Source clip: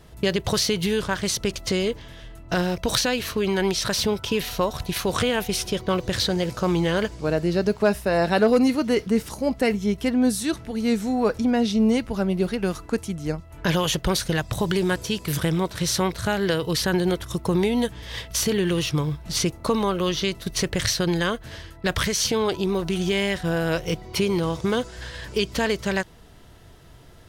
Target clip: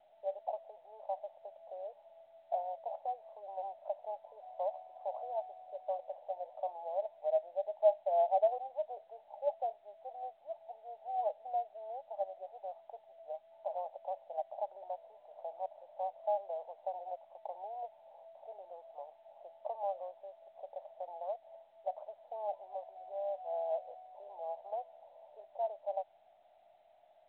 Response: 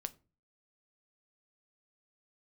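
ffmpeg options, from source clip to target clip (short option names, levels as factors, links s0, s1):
-af "asuperpass=centerf=700:order=8:qfactor=2.7,volume=0.668" -ar 8000 -c:a pcm_mulaw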